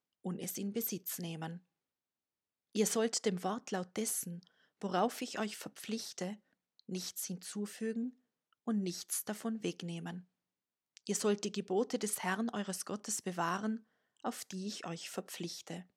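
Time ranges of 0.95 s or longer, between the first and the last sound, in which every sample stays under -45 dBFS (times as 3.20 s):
1.57–2.75 s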